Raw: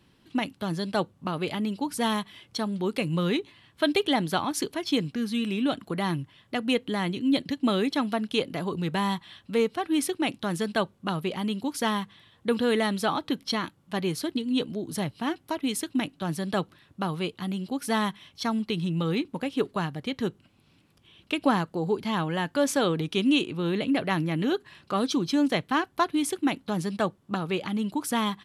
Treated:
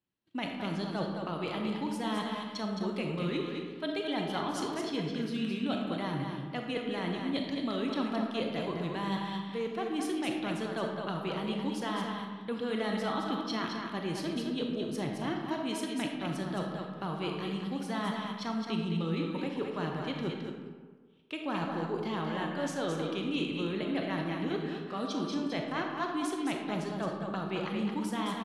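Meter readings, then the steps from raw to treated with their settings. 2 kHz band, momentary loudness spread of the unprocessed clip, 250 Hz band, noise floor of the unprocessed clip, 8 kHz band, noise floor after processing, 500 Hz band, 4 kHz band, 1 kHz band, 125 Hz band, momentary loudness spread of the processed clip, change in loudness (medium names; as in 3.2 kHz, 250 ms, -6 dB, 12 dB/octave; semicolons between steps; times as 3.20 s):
-6.5 dB, 7 LU, -6.0 dB, -63 dBFS, -10.5 dB, -43 dBFS, -6.0 dB, -7.0 dB, -6.0 dB, -5.0 dB, 4 LU, -6.0 dB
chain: gate -52 dBFS, range -28 dB; bass shelf 81 Hz -8.5 dB; reverse; compression 6:1, threshold -33 dBFS, peak gain reduction 14.5 dB; reverse; distance through air 50 m; on a send: delay 216 ms -5.5 dB; on the sum: algorithmic reverb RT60 1.5 s, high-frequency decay 0.5×, pre-delay 0 ms, DRR 2 dB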